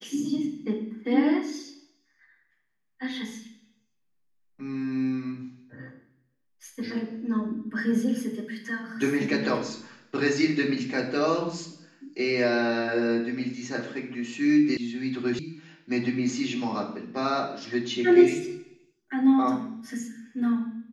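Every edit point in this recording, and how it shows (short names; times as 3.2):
14.77 sound cut off
15.39 sound cut off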